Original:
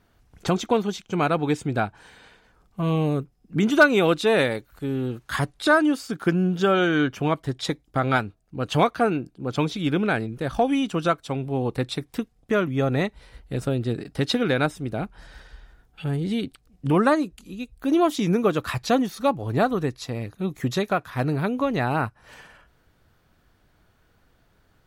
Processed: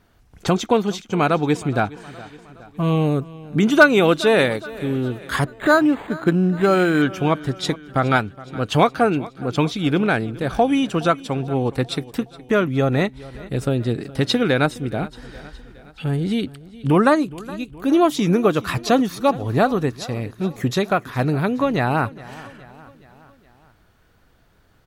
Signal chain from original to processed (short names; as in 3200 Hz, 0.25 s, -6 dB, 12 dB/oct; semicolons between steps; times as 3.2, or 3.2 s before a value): feedback echo 0.417 s, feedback 55%, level -19.5 dB; 5.44–7.02 decimation joined by straight lines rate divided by 8×; gain +4 dB